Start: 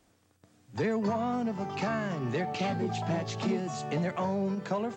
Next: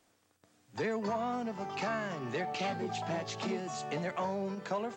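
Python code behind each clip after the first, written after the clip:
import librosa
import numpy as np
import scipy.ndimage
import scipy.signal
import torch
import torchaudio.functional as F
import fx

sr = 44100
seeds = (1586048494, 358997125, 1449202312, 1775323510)

y = fx.low_shelf(x, sr, hz=250.0, db=-11.0)
y = F.gain(torch.from_numpy(y), -1.0).numpy()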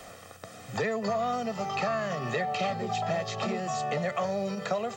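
y = x + 0.69 * np.pad(x, (int(1.6 * sr / 1000.0), 0))[:len(x)]
y = fx.band_squash(y, sr, depth_pct=70)
y = F.gain(torch.from_numpy(y), 3.0).numpy()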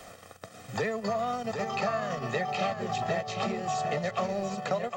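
y = fx.transient(x, sr, attack_db=1, sustain_db=-12)
y = y + 10.0 ** (-6.5 / 20.0) * np.pad(y, (int(756 * sr / 1000.0), 0))[:len(y)]
y = F.gain(torch.from_numpy(y), -1.0).numpy()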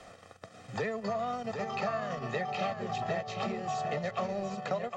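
y = fx.air_absorb(x, sr, metres=58.0)
y = F.gain(torch.from_numpy(y), -3.0).numpy()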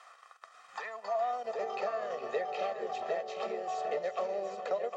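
y = fx.filter_sweep_highpass(x, sr, from_hz=1100.0, to_hz=460.0, start_s=0.72, end_s=1.64, q=2.9)
y = y + 10.0 ** (-13.0 / 20.0) * np.pad(y, (int(415 * sr / 1000.0), 0))[:len(y)]
y = F.gain(torch.from_numpy(y), -5.5).numpy()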